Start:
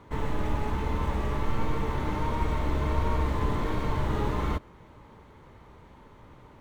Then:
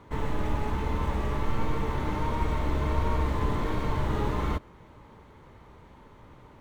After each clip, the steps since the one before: no audible change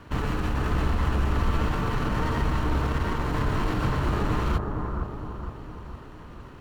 comb filter that takes the minimum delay 0.7 ms; peak limiter -24 dBFS, peak gain reduction 8.5 dB; bucket-brigade echo 461 ms, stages 4096, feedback 52%, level -4 dB; trim +6 dB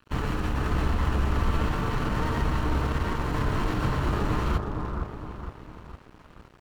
crossover distortion -43 dBFS

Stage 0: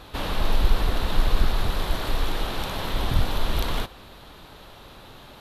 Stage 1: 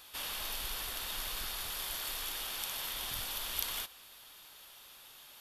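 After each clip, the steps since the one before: pre-emphasis filter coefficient 0.97; band-stop 4 kHz, Q 9; trim +2.5 dB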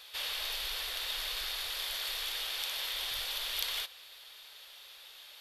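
graphic EQ 125/250/500/2000/4000 Hz -7/-9/+8/+7/+10 dB; trim -4.5 dB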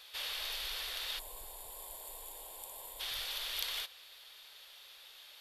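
time-frequency box 1.19–3.00 s, 1.1–6.8 kHz -19 dB; trim -3 dB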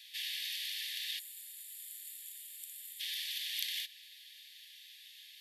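Chebyshev high-pass 1.7 kHz, order 8; trim +1 dB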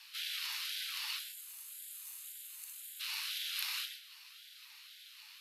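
gated-style reverb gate 170 ms flat, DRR 4.5 dB; ring modulator with a swept carrier 540 Hz, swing 60%, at 1.9 Hz; trim +1.5 dB

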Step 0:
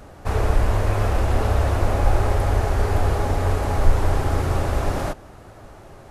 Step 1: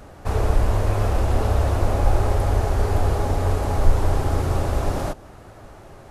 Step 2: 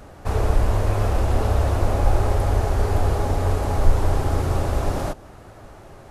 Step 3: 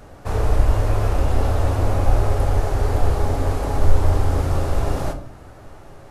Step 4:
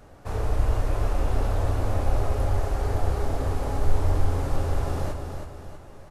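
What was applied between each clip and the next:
dynamic bell 1.9 kHz, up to -4 dB, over -41 dBFS, Q 1
no audible change
simulated room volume 77 m³, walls mixed, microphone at 0.37 m; trim -1 dB
feedback delay 323 ms, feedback 45%, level -6.5 dB; trim -7 dB

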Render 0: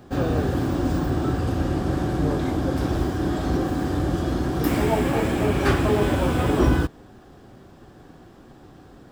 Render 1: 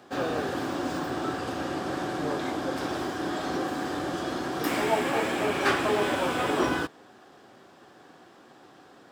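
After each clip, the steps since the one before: frequency weighting A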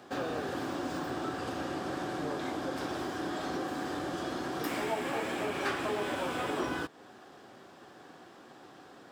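compression 2:1, threshold -36 dBFS, peak gain reduction 9.5 dB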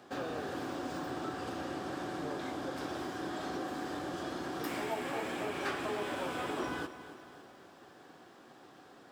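bit-crushed delay 276 ms, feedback 55%, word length 10-bit, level -13.5 dB; trim -3.5 dB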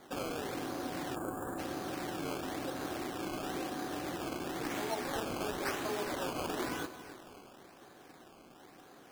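decimation with a swept rate 16×, swing 100% 0.98 Hz; time-frequency box 1.16–1.59 s, 1.8–6.8 kHz -20 dB

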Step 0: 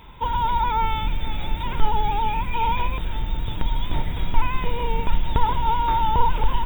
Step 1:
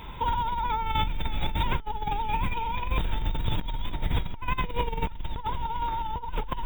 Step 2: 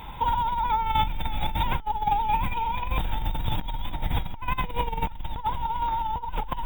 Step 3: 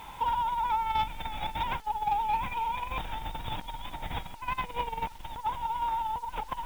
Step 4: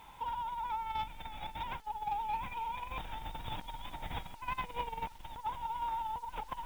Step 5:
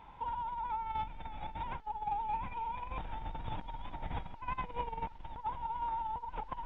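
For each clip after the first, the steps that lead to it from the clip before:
compressor with a negative ratio -26 dBFS, ratio -1; trim -2 dB
graphic EQ with 31 bands 400 Hz -6 dB, 800 Hz +9 dB, 16 kHz +12 dB
overdrive pedal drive 10 dB, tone 3.1 kHz, clips at -11 dBFS; bit crusher 8-bit; trim -6.5 dB
gain riding within 3 dB 2 s; trim -7.5 dB
tape spacing loss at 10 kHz 33 dB; trim +3 dB

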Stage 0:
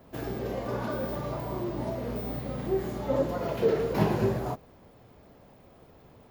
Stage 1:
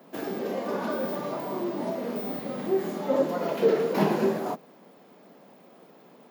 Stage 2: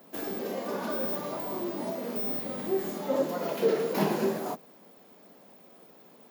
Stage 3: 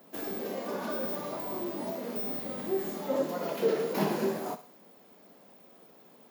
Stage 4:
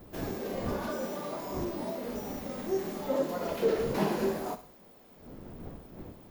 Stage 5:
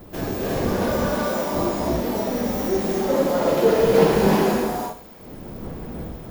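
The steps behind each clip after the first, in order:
steep high-pass 170 Hz 48 dB/octave; trim +3 dB
treble shelf 5.1 kHz +10 dB; trim -3.5 dB
thinning echo 65 ms, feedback 49%, high-pass 780 Hz, level -12 dB; trim -2 dB
wind noise 300 Hz -45 dBFS; slew-rate limiter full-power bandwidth 59 Hz
gated-style reverb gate 400 ms rising, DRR -2.5 dB; trim +8 dB

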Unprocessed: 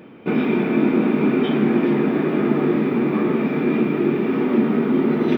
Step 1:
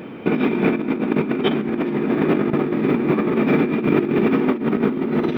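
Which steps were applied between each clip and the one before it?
compressor with a negative ratio -22 dBFS, ratio -0.5; trim +4 dB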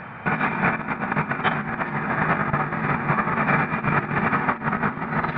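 FFT filter 120 Hz 0 dB, 200 Hz -9 dB, 300 Hz -22 dB, 430 Hz -17 dB, 770 Hz +1 dB, 1.2 kHz +3 dB, 1.7 kHz +6 dB, 3.2 kHz -12 dB, 4.6 kHz -7 dB, 7.4 kHz -28 dB; trim +4.5 dB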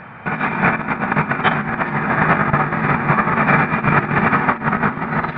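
level rider

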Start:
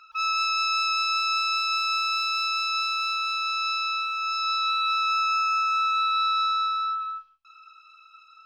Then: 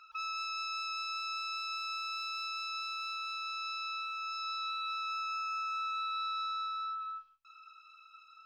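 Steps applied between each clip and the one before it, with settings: compression 2:1, threshold -36 dBFS, peak gain reduction 8.5 dB; trim -5 dB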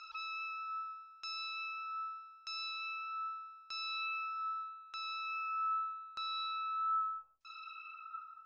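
peak limiter -41 dBFS, peak gain reduction 11.5 dB; LFO low-pass saw down 0.81 Hz 550–6200 Hz; trim +4 dB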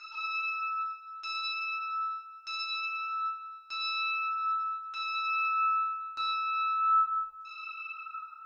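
FDN reverb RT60 0.97 s, low-frequency decay 1.05×, high-frequency decay 0.85×, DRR -5.5 dB

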